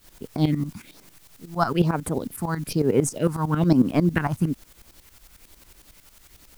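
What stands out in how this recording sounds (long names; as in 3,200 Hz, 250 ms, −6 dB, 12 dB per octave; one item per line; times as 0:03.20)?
phaser sweep stages 4, 1.1 Hz, lowest notch 430–5,000 Hz
a quantiser's noise floor 10 bits, dither triangular
tremolo saw up 11 Hz, depth 80%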